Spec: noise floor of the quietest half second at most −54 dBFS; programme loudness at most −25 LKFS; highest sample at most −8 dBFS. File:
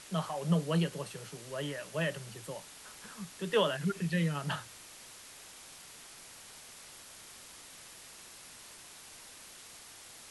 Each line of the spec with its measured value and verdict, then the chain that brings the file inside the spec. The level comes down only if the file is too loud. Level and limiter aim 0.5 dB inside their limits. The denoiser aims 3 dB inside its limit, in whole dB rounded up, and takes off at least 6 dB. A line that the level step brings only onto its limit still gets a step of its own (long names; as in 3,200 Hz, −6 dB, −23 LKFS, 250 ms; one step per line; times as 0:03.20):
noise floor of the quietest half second −52 dBFS: out of spec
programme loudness −34.5 LKFS: in spec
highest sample −16.5 dBFS: in spec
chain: broadband denoise 6 dB, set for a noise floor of −52 dBFS